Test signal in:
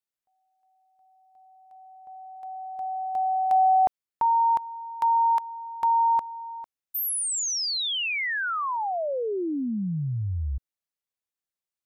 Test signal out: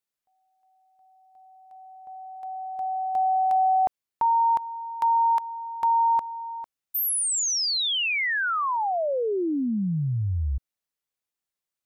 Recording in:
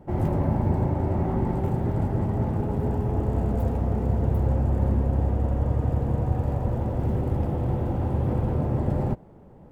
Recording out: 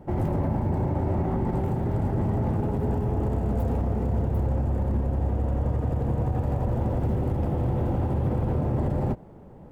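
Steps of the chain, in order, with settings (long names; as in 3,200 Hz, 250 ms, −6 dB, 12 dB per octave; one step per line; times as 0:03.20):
brickwall limiter −20 dBFS
level +2.5 dB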